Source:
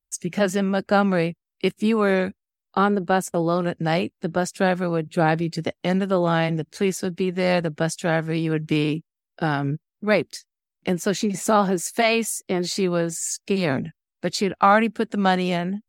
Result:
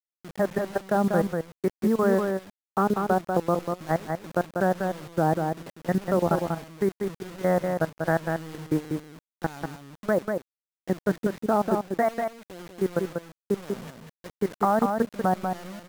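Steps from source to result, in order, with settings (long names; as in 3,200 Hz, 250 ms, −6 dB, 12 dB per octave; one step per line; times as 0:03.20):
elliptic low-pass filter 1,900 Hz, stop band 40 dB
treble cut that deepens with the level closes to 880 Hz, closed at −14.5 dBFS
output level in coarse steps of 21 dB
bit reduction 7 bits
pitch vibrato 1.5 Hz 23 cents
on a send: single-tap delay 192 ms −5 dB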